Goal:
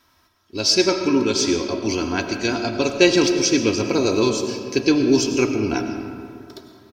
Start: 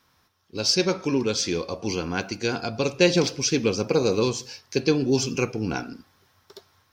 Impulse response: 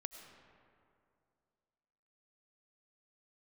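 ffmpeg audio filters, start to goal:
-filter_complex "[0:a]aecho=1:1:3.1:0.6[link_01];[1:a]atrim=start_sample=2205[link_02];[link_01][link_02]afir=irnorm=-1:irlink=0,volume=7dB"

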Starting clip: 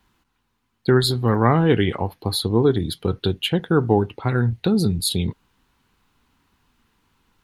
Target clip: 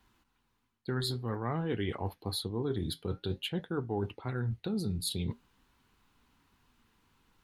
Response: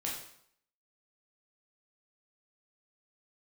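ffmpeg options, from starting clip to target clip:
-af "flanger=delay=2.8:depth=6.4:regen=-78:speed=0.51:shape=sinusoidal,areverse,acompressor=threshold=-32dB:ratio=4,areverse"

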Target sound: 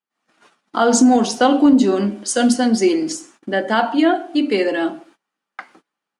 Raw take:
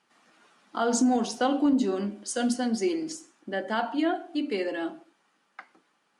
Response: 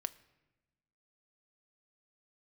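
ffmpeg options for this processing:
-af "dynaudnorm=framelen=110:gausssize=3:maxgain=11.5dB,agate=range=-23dB:threshold=-47dB:ratio=16:detection=peak"

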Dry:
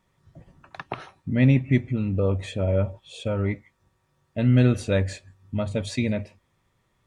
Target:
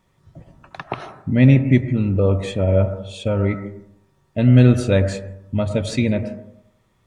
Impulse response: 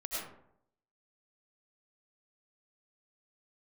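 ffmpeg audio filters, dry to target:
-filter_complex "[0:a]asplit=2[link_01][link_02];[link_02]lowpass=frequency=1800:width=0.5412,lowpass=frequency=1800:width=1.3066[link_03];[1:a]atrim=start_sample=2205[link_04];[link_03][link_04]afir=irnorm=-1:irlink=0,volume=-10dB[link_05];[link_01][link_05]amix=inputs=2:normalize=0,volume=4.5dB"

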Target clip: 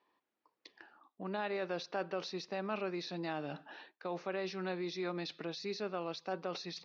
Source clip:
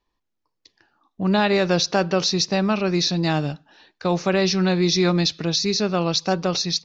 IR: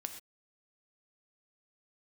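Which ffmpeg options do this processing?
-af "areverse,acompressor=threshold=-34dB:ratio=10,areverse,alimiter=level_in=5.5dB:limit=-24dB:level=0:latency=1:release=81,volume=-5.5dB,highpass=320,lowpass=2700,volume=4dB"

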